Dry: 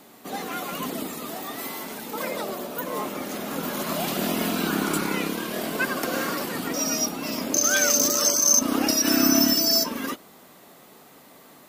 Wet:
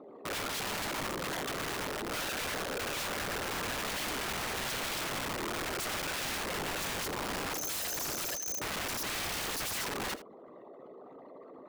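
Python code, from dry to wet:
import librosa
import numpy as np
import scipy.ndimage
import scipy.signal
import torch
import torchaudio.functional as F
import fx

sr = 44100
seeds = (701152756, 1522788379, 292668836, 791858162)

y = fx.envelope_sharpen(x, sr, power=3.0)
y = scipy.signal.sosfilt(scipy.signal.butter(2, 3400.0, 'lowpass', fs=sr, output='sos'), y)
y = fx.rider(y, sr, range_db=3, speed_s=2.0)
y = fx.doubler(y, sr, ms=15.0, db=-11.0)
y = (np.mod(10.0 ** (27.5 / 20.0) * y + 1.0, 2.0) - 1.0) / 10.0 ** (27.5 / 20.0)
y = y + 10.0 ** (-15.5 / 20.0) * np.pad(y, (int(80 * sr / 1000.0), 0))[:len(y)]
y = y * 10.0 ** (-3.5 / 20.0)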